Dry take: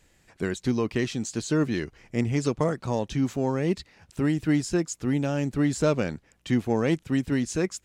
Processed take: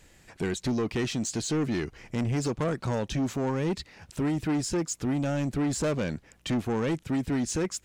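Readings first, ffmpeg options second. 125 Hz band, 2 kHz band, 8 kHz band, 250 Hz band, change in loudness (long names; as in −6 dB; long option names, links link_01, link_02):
−2.5 dB, −3.0 dB, +2.0 dB, −3.0 dB, −2.5 dB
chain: -filter_complex "[0:a]asplit=2[link_01][link_02];[link_02]acompressor=threshold=-32dB:ratio=6,volume=-1.5dB[link_03];[link_01][link_03]amix=inputs=2:normalize=0,asoftclip=type=tanh:threshold=-23dB"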